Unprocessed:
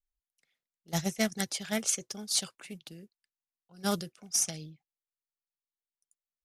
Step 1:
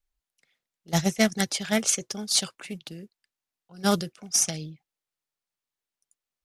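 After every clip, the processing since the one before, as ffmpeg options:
-af "highshelf=f=8.9k:g=-6.5,volume=7.5dB"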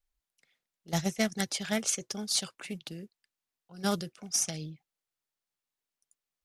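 -af "acompressor=threshold=-32dB:ratio=1.5,volume=-1.5dB"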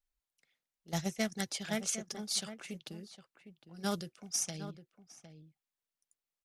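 -filter_complex "[0:a]asplit=2[a][b];[b]adelay=758,volume=-11dB,highshelf=f=4k:g=-17.1[c];[a][c]amix=inputs=2:normalize=0,volume=-5dB"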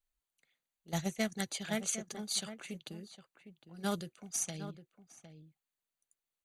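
-af "asuperstop=centerf=5300:order=8:qfactor=5.7"

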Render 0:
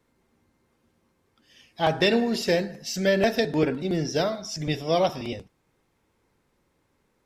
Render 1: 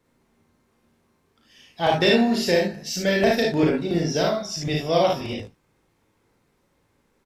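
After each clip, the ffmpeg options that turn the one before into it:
-af "aecho=1:1:35|55|73:0.631|0.668|0.531"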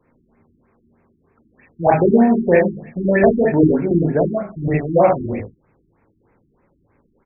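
-af "afftfilt=real='re*lt(b*sr/1024,370*pow(2700/370,0.5+0.5*sin(2*PI*3.2*pts/sr)))':imag='im*lt(b*sr/1024,370*pow(2700/370,0.5+0.5*sin(2*PI*3.2*pts/sr)))':win_size=1024:overlap=0.75,volume=7dB"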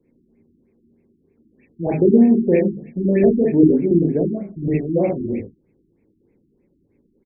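-af "firequalizer=gain_entry='entry(130,0);entry(190,6);entry(370,7);entry(660,-8);entry(1300,-21);entry(2200,0)':delay=0.05:min_phase=1,volume=-5dB"

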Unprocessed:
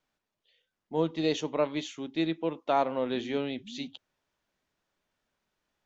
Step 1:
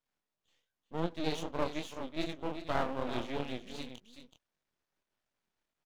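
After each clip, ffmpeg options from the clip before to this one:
-af "aecho=1:1:378:0.316,flanger=delay=20:depth=7.4:speed=2.6,aeval=exprs='max(val(0),0)':c=same"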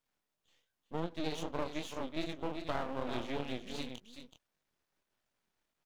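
-af "acompressor=threshold=-34dB:ratio=4,volume=2.5dB"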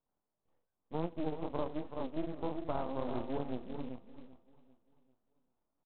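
-af "lowpass=f=1.1k:w=0.5412,lowpass=f=1.1k:w=1.3066,aresample=8000,acrusher=bits=5:mode=log:mix=0:aa=0.000001,aresample=44100,aecho=1:1:393|786|1179|1572:0.112|0.0505|0.0227|0.0102,volume=1dB"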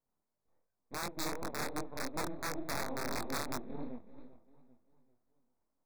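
-af "aeval=exprs='(mod(21.1*val(0)+1,2)-1)/21.1':c=same,flanger=delay=20:depth=7.9:speed=2.8,asuperstop=centerf=3000:order=4:qfactor=2.2,volume=2.5dB"

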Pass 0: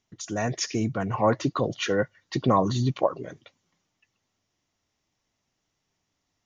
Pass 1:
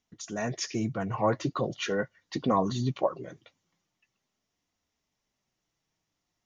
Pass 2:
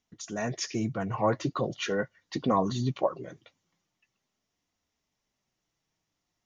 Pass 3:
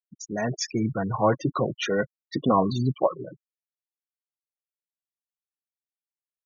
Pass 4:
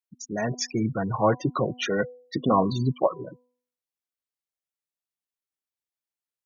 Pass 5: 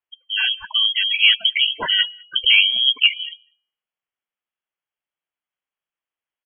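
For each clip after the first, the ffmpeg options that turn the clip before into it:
-af "flanger=delay=3.9:depth=2.5:regen=-53:speed=0.42:shape=triangular"
-af anull
-af "afftfilt=real='re*gte(hypot(re,im),0.0251)':imag='im*gte(hypot(re,im),0.0251)':win_size=1024:overlap=0.75,volume=4.5dB"
-af "bandreject=f=247.8:t=h:w=4,bandreject=f=495.6:t=h:w=4,bandreject=f=743.4:t=h:w=4,bandreject=f=991.2:t=h:w=4"
-filter_complex "[0:a]acontrast=30,lowpass=f=2.9k:t=q:w=0.5098,lowpass=f=2.9k:t=q:w=0.6013,lowpass=f=2.9k:t=q:w=0.9,lowpass=f=2.9k:t=q:w=2.563,afreqshift=-3400,asplit=2[a][b];[b]adelay=198.3,volume=-29dB,highshelf=f=4k:g=-4.46[c];[a][c]amix=inputs=2:normalize=0,volume=2dB"

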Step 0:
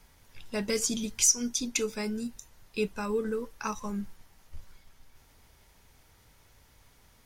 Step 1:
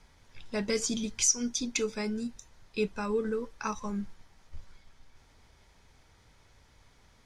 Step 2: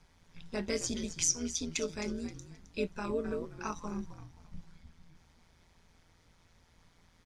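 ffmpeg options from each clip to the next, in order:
-af "lowpass=6.6k,bandreject=f=2.8k:w=19"
-filter_complex "[0:a]asplit=4[a][b][c][d];[b]adelay=264,afreqshift=-80,volume=-13dB[e];[c]adelay=528,afreqshift=-160,volume=-22.4dB[f];[d]adelay=792,afreqshift=-240,volume=-31.7dB[g];[a][e][f][g]amix=inputs=4:normalize=0,tremolo=f=170:d=0.71,volume=-1dB"

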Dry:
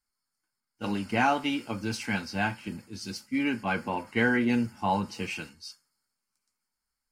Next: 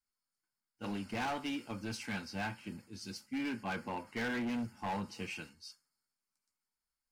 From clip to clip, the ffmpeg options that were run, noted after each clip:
-af "asoftclip=type=hard:threshold=-25.5dB,volume=-7.5dB"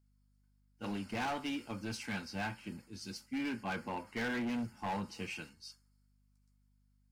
-af "aeval=exprs='val(0)+0.000316*(sin(2*PI*50*n/s)+sin(2*PI*2*50*n/s)/2+sin(2*PI*3*50*n/s)/3+sin(2*PI*4*50*n/s)/4+sin(2*PI*5*50*n/s)/5)':c=same"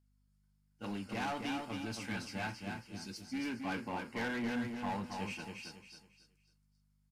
-filter_complex "[0:a]asplit=2[a][b];[b]aecho=0:1:274|548|822|1096:0.562|0.174|0.054|0.0168[c];[a][c]amix=inputs=2:normalize=0,aresample=32000,aresample=44100,volume=-1.5dB"

